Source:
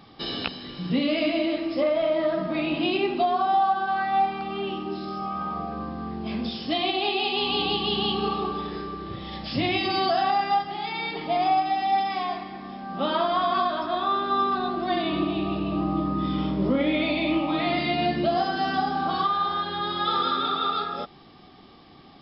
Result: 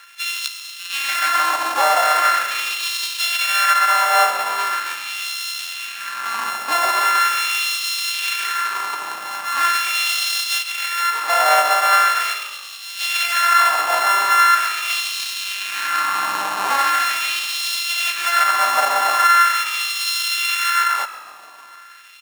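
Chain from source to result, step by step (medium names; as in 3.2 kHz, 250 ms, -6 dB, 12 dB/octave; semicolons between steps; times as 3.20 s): sorted samples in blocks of 32 samples; peaking EQ 1.5 kHz +2.5 dB 0.2 oct; in parallel at -6 dB: wavefolder -24.5 dBFS; on the sum: LFO high-pass sine 0.41 Hz 820–3500 Hz; harmony voices -5 st -15 dB, +4 st -10 dB, +7 st -15 dB; on a send: frequency-shifting echo 138 ms, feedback 51%, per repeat -50 Hz, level -15.5 dB; on the sum: trim +2.5 dB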